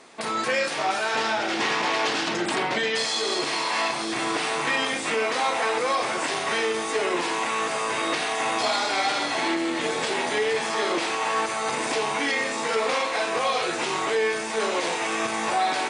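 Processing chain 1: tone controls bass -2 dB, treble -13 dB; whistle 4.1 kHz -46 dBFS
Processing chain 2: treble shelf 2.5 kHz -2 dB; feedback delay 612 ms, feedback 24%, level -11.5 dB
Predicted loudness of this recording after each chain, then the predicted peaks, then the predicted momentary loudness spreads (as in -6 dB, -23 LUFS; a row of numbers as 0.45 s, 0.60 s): -25.5 LUFS, -25.0 LUFS; -13.0 dBFS, -12.0 dBFS; 3 LU, 2 LU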